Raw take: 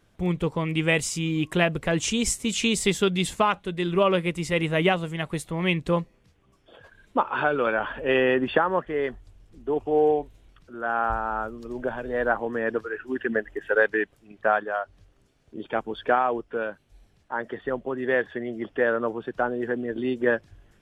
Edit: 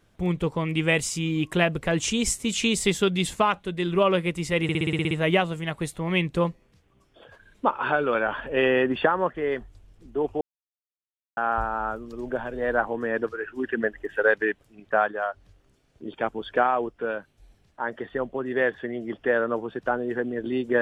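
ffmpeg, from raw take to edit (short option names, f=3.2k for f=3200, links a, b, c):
-filter_complex "[0:a]asplit=11[a][b][c][d][e][f][g][h][i][j][k];[a]atrim=end=4.692[l];[b]atrim=start=4.628:end=4.692[m];[c]atrim=start=4.628:end=4.692[n];[d]atrim=start=4.628:end=4.692[o];[e]atrim=start=4.628:end=4.692[p];[f]atrim=start=4.628:end=4.692[q];[g]atrim=start=4.628:end=4.692[r];[h]atrim=start=4.628:end=4.692[s];[i]atrim=start=4.628:end=9.93,asetpts=PTS-STARTPTS,afade=t=out:st=5.298:d=0.004:c=hsin[t];[j]atrim=start=9.93:end=10.89,asetpts=PTS-STARTPTS,volume=0[u];[k]atrim=start=10.89,asetpts=PTS-STARTPTS,afade=t=in:d=0.004:c=hsin[v];[l][m]acrossfade=d=0.004:c1=hsin:c2=hsin[w];[w][n]acrossfade=d=0.004:c1=hsin:c2=hsin[x];[x][o]acrossfade=d=0.004:c1=hsin:c2=hsin[y];[y][p]acrossfade=d=0.004:c1=hsin:c2=hsin[z];[z][q]acrossfade=d=0.004:c1=hsin:c2=hsin[aa];[aa][r]acrossfade=d=0.004:c1=hsin:c2=hsin[ab];[ab][s]acrossfade=d=0.004:c1=hsin:c2=hsin[ac];[t][u][v]concat=n=3:v=0:a=1[ad];[ac][ad]acrossfade=d=0.004:c1=hsin:c2=hsin"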